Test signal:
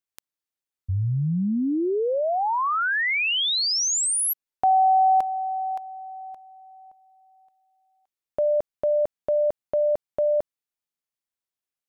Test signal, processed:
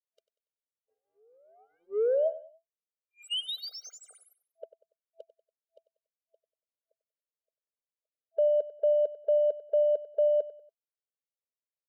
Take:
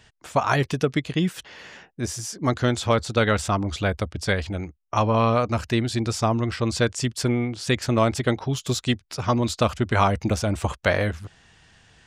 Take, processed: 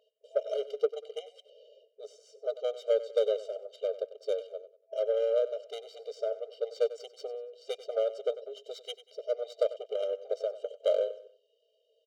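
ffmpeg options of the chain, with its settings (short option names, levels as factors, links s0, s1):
-af "highpass=f=46:w=0.5412,highpass=f=46:w=1.3066,afftfilt=real='re*(1-between(b*sr/4096,660,2400))':imag='im*(1-between(b*sr/4096,660,2400))':win_size=4096:overlap=0.75,adynamicsmooth=sensitivity=1:basefreq=1500,asoftclip=type=tanh:threshold=0.251,aecho=1:1:95|190|285:0.168|0.0588|0.0206,afftfilt=real='re*eq(mod(floor(b*sr/1024/400),2),1)':imag='im*eq(mod(floor(b*sr/1024/400),2),1)':win_size=1024:overlap=0.75,volume=0.891"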